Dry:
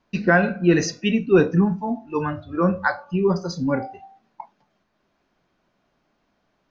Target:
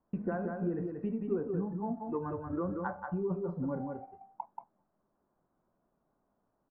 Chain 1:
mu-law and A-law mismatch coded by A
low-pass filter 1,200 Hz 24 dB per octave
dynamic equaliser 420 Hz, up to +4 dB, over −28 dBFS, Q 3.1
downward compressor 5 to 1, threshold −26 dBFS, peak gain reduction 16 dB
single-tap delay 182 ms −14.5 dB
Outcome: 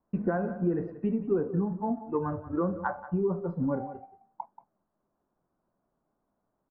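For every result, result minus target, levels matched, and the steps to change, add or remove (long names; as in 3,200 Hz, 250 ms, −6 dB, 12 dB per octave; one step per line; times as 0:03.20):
echo-to-direct −10 dB; downward compressor: peak gain reduction −6.5 dB
change: single-tap delay 182 ms −4.5 dB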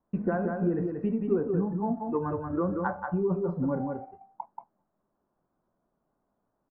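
downward compressor: peak gain reduction −6.5 dB
change: downward compressor 5 to 1, threshold −34 dBFS, peak gain reduction 22.5 dB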